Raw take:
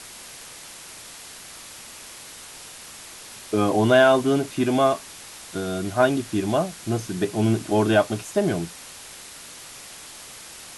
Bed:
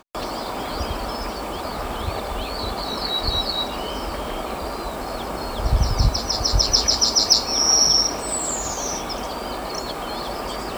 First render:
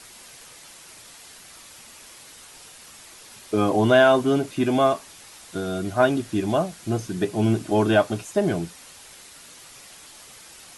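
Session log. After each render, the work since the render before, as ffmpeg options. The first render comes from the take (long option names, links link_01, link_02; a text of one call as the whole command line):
ffmpeg -i in.wav -af "afftdn=noise_reduction=6:noise_floor=-42" out.wav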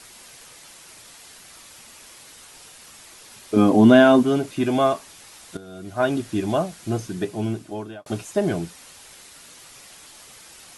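ffmpeg -i in.wav -filter_complex "[0:a]asettb=1/sr,asplit=3[link_01][link_02][link_03];[link_01]atrim=end=3.564[link_04];[link_02]atrim=start=3.56:end=4.23,asetpts=PTS-STARTPTS,afade=type=in:duration=0.004:curve=qsin,afade=type=out:start_time=0.666:duration=0.004:curve=qsin,equalizer=frequency=240:width=1.9:gain=12.5[link_05];[link_03]atrim=start=4.226[link_06];[link_04][link_05]acrossfade=duration=0.004:curve1=hsin:curve2=qsin[link_07];[link_07][link_06]acrossfade=duration=0.004:curve1=qsin:curve2=hsin,asplit=3[link_08][link_09][link_10];[link_08]atrim=end=5.57,asetpts=PTS-STARTPTS,afade=type=out:start_time=5.566:duration=0.004:curve=hsin:silence=0.199526[link_11];[link_09]atrim=start=5.57:end=8.06,asetpts=PTS-STARTPTS,afade=type=in:duration=0.57:curve=qua:silence=0.199526,afade=type=out:start_time=1.43:duration=1.06[link_12];[link_10]atrim=start=8.06,asetpts=PTS-STARTPTS,afade=type=in:duration=0.004:curve=hsin[link_13];[link_11][link_12][link_13]concat=n=3:v=0:a=1" out.wav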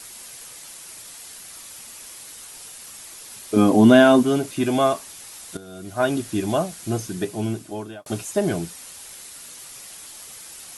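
ffmpeg -i in.wav -af "highshelf=frequency=7200:gain=11.5" out.wav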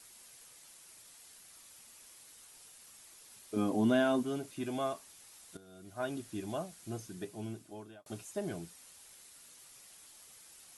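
ffmpeg -i in.wav -af "volume=-16dB" out.wav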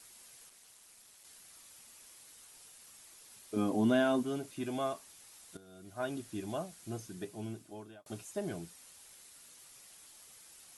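ffmpeg -i in.wav -filter_complex "[0:a]asplit=3[link_01][link_02][link_03];[link_01]afade=type=out:start_time=0.49:duration=0.02[link_04];[link_02]aeval=exprs='val(0)*sin(2*PI*110*n/s)':channel_layout=same,afade=type=in:start_time=0.49:duration=0.02,afade=type=out:start_time=1.23:duration=0.02[link_05];[link_03]afade=type=in:start_time=1.23:duration=0.02[link_06];[link_04][link_05][link_06]amix=inputs=3:normalize=0" out.wav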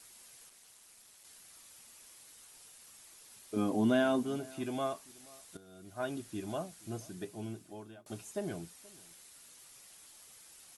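ffmpeg -i in.wav -filter_complex "[0:a]asplit=2[link_01][link_02];[link_02]adelay=478.1,volume=-23dB,highshelf=frequency=4000:gain=-10.8[link_03];[link_01][link_03]amix=inputs=2:normalize=0" out.wav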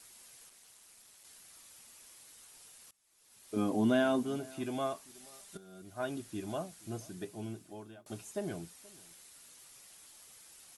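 ffmpeg -i in.wav -filter_complex "[0:a]asettb=1/sr,asplit=3[link_01][link_02][link_03];[link_01]atrim=end=5.144[link_04];[link_02]atrim=start=5.14:end=5.82,asetpts=PTS-STARTPTS,afade=type=in:duration=0.004:curve=qsin,afade=type=out:start_time=0.676:duration=0.004:curve=qsin,aecho=1:1:5.1:0.65,atrim=end_sample=29988[link_05];[link_03]atrim=start=5.816[link_06];[link_04][link_05]acrossfade=duration=0.004:curve1=hsin:curve2=qsin[link_07];[link_07][link_06]acrossfade=duration=0.004:curve1=qsin:curve2=hsin,asplit=2[link_08][link_09];[link_08]atrim=end=2.91,asetpts=PTS-STARTPTS,afade=type=out:start_time=2.906:duration=0.004:curve=hsin:silence=0.0841395[link_10];[link_09]atrim=start=2.91,asetpts=PTS-STARTPTS,afade=type=in:duration=0.62:curve=qua:silence=0.0841395[link_11];[link_10][link_11]concat=n=2:v=0:a=1" out.wav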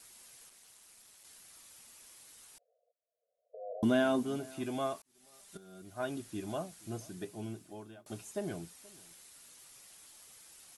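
ffmpeg -i in.wav -filter_complex "[0:a]asettb=1/sr,asplit=3[link_01][link_02][link_03];[link_01]atrim=end=2.584[link_04];[link_02]atrim=start=2.58:end=3.83,asetpts=PTS-STARTPTS,afade=type=in:duration=0.004:curve=qsin,afade=type=out:start_time=1.246:duration=0.004:curve=qsin,asuperpass=centerf=570:order=20:qfactor=2.1[link_05];[link_03]atrim=start=3.826[link_06];[link_04][link_05]acrossfade=duration=0.004:curve1=hsin:curve2=qsin[link_07];[link_07][link_06]acrossfade=duration=0.004:curve1=qsin:curve2=hsin,asplit=2[link_08][link_09];[link_08]atrim=end=5.02,asetpts=PTS-STARTPTS,afade=type=out:start_time=5.016:duration=0.004:curve=hsin[link_10];[link_09]atrim=start=5.02,asetpts=PTS-STARTPTS,afade=type=in:duration=0.64[link_11];[link_10][link_11]concat=n=2:v=0:a=1" out.wav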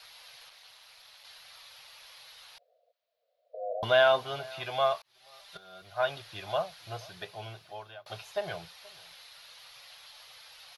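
ffmpeg -i in.wav -af "firequalizer=gain_entry='entry(150,0);entry(240,-23);entry(510,7);entry(760,10);entry(1900,10);entry(4100,14);entry(7900,-14);entry(13000,2)':delay=0.05:min_phase=1" out.wav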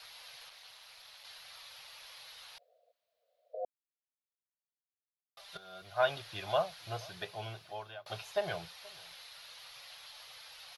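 ffmpeg -i in.wav -filter_complex "[0:a]asplit=3[link_01][link_02][link_03];[link_01]atrim=end=3.65,asetpts=PTS-STARTPTS,afade=type=out:start_time=3.646:duration=0.004:curve=hsin[link_04];[link_02]atrim=start=3.65:end=5.37,asetpts=PTS-STARTPTS,volume=0[link_05];[link_03]atrim=start=5.37,asetpts=PTS-STARTPTS,afade=type=in:duration=0.004:curve=hsin[link_06];[link_04][link_05][link_06]concat=n=3:v=0:a=1" out.wav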